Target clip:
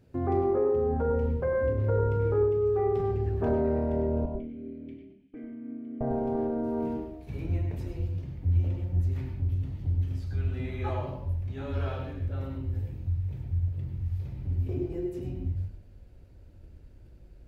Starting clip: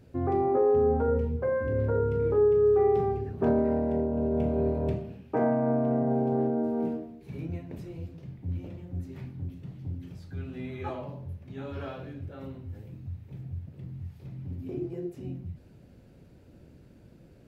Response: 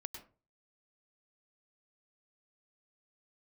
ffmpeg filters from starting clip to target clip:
-filter_complex "[0:a]asplit=2[a][b];[b]alimiter=level_in=2dB:limit=-24dB:level=0:latency=1,volume=-2dB,volume=0dB[c];[a][c]amix=inputs=2:normalize=0,asettb=1/sr,asplit=3[d][e][f];[d]atrim=end=4.254[g];[e]atrim=start=4.25:end=6.01,asetpts=PTS-STARTPTS,afade=t=in:d=0.004:c=qsin,afade=t=out:st=1.756:d=0.004:c=qsin,asplit=3[h][i][j];[h]bandpass=f=270:t=q:w=8,volume=0dB[k];[i]bandpass=f=2.29k:t=q:w=8,volume=-6dB[l];[j]bandpass=f=3.01k:t=q:w=8,volume=-9dB[m];[k][l][m]amix=inputs=3:normalize=0[n];[f]atrim=start=6.006[o];[g][n]acrossfade=d=0.004:c1=hsin:c2=qsin[p];[p][o]acrossfade=d=0.004:c1=qsin:c2=hsin,agate=range=-7dB:threshold=-44dB:ratio=16:detection=peak[q];[1:a]atrim=start_sample=2205[r];[q][r]afir=irnorm=-1:irlink=0,asubboost=boost=8:cutoff=60"

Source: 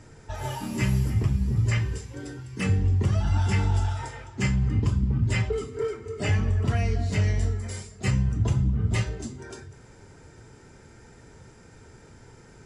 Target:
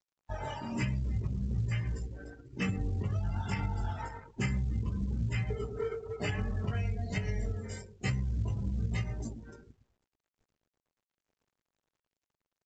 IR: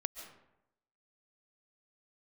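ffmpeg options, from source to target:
-filter_complex "[0:a]flanger=delay=16.5:depth=3:speed=1.1,aeval=exprs='sgn(val(0))*max(abs(val(0))-0.00531,0)':c=same,asplit=2[a][b];[b]adelay=111,lowpass=f=970:p=1,volume=-7dB,asplit=2[c][d];[d]adelay=111,lowpass=f=970:p=1,volume=0.42,asplit=2[e][f];[f]adelay=111,lowpass=f=970:p=1,volume=0.42,asplit=2[g][h];[h]adelay=111,lowpass=f=970:p=1,volume=0.42,asplit=2[i][j];[j]adelay=111,lowpass=f=970:p=1,volume=0.42[k];[a][c][e][g][i][k]amix=inputs=6:normalize=0,acompressor=threshold=-28dB:ratio=16,adynamicequalizer=threshold=0.00355:dfrequency=320:dqfactor=1.2:tfrequency=320:tqfactor=1.2:attack=5:release=100:ratio=0.375:range=2:mode=cutabove:tftype=bell,afftdn=nr=21:nf=-48,equalizer=f=80:t=o:w=0.42:g=-5.5,volume=1.5dB" -ar 16000 -c:a pcm_mulaw

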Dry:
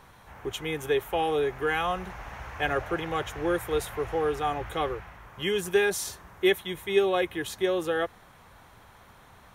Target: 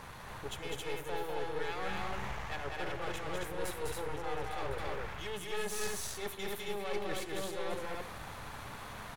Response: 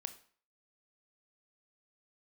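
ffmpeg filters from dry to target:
-filter_complex "[0:a]bandreject=f=360:w=12,areverse,acompressor=threshold=-44dB:ratio=5,areverse,aeval=exprs='clip(val(0),-1,0.00141)':c=same,aecho=1:1:209.9|282.8:0.708|0.794,asplit=2[a][b];[1:a]atrim=start_sample=2205,asetrate=22491,aresample=44100[c];[b][c]afir=irnorm=-1:irlink=0,volume=-0.5dB[d];[a][d]amix=inputs=2:normalize=0,asetrate=45938,aresample=44100,volume=1dB"

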